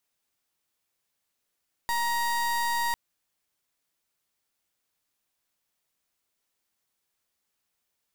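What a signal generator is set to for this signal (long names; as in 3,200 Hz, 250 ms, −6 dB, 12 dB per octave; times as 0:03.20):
pulse wave 943 Hz, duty 31% −27 dBFS 1.05 s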